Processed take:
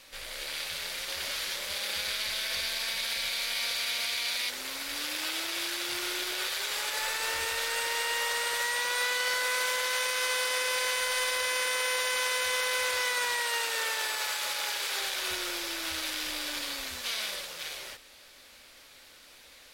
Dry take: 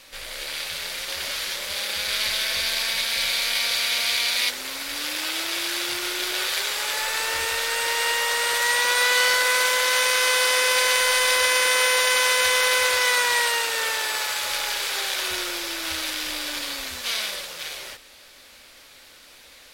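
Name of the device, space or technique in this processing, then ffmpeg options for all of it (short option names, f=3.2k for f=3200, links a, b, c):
soft clipper into limiter: -filter_complex "[0:a]asettb=1/sr,asplit=3[a][b][c];[a]atrim=end=13.404[d];[b]atrim=start=13.4:end=15,asetpts=PTS-STARTPTS,afade=t=in:d=0.004:c=qsin,afade=t=out:st=1.596:d=0.004:c=qsin,highpass=f=200:p=1[e];[c]atrim=start=14.996[f];[d][e]acrossfade=d=0.004:c1=hsin:c2=qsin[g];[g][f]acrossfade=d=0.004:c1=qsin:c2=hsin,asoftclip=type=tanh:threshold=-7.5dB,alimiter=limit=-16dB:level=0:latency=1:release=59,volume=-5dB"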